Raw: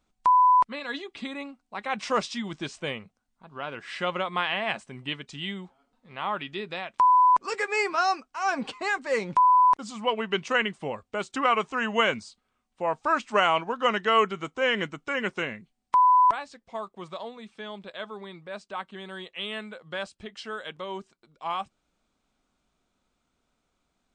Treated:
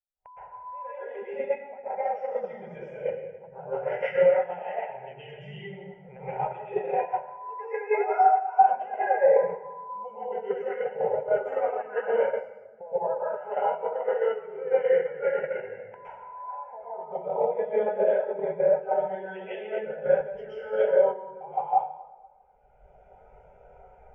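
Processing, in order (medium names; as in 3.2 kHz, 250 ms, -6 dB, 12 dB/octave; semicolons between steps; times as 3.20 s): chunks repeated in reverse 103 ms, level -13 dB; recorder AGC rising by 18 dB/s; high-order bell 660 Hz +10 dB; band-stop 680 Hz, Q 12; compression 4:1, threshold -28 dBFS, peak gain reduction 19.5 dB; distance through air 130 m; static phaser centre 1.1 kHz, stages 6; plate-style reverb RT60 2.1 s, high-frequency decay 0.6×, pre-delay 105 ms, DRR -9.5 dB; gate -23 dBFS, range -6 dB; spectral contrast expander 1.5:1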